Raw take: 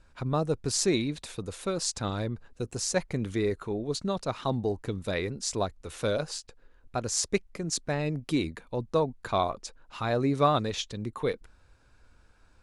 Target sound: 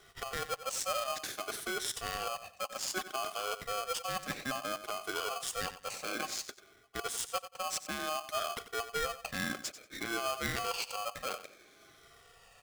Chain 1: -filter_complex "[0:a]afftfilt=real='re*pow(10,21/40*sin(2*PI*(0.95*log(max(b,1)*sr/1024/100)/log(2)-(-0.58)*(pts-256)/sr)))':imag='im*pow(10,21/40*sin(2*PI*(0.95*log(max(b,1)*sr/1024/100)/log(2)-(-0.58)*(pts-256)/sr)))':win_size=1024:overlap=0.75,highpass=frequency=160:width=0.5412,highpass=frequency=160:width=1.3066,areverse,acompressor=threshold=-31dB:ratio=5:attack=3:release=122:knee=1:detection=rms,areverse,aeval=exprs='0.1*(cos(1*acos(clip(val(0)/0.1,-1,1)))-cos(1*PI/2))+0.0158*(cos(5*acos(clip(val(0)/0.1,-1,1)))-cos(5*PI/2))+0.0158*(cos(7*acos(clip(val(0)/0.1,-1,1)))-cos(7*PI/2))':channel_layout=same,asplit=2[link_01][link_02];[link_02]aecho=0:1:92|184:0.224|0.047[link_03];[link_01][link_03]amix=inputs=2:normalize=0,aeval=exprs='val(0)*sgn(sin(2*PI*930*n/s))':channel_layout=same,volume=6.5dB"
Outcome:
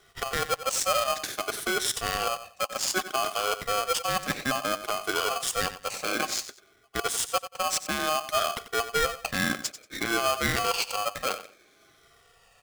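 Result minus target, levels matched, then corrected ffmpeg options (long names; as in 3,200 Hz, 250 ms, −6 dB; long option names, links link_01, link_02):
downward compressor: peak gain reduction −6.5 dB
-filter_complex "[0:a]afftfilt=real='re*pow(10,21/40*sin(2*PI*(0.95*log(max(b,1)*sr/1024/100)/log(2)-(-0.58)*(pts-256)/sr)))':imag='im*pow(10,21/40*sin(2*PI*(0.95*log(max(b,1)*sr/1024/100)/log(2)-(-0.58)*(pts-256)/sr)))':win_size=1024:overlap=0.75,highpass=frequency=160:width=0.5412,highpass=frequency=160:width=1.3066,areverse,acompressor=threshold=-39dB:ratio=5:attack=3:release=122:knee=1:detection=rms,areverse,aeval=exprs='0.1*(cos(1*acos(clip(val(0)/0.1,-1,1)))-cos(1*PI/2))+0.0158*(cos(5*acos(clip(val(0)/0.1,-1,1)))-cos(5*PI/2))+0.0158*(cos(7*acos(clip(val(0)/0.1,-1,1)))-cos(7*PI/2))':channel_layout=same,asplit=2[link_01][link_02];[link_02]aecho=0:1:92|184:0.224|0.047[link_03];[link_01][link_03]amix=inputs=2:normalize=0,aeval=exprs='val(0)*sgn(sin(2*PI*930*n/s))':channel_layout=same,volume=6.5dB"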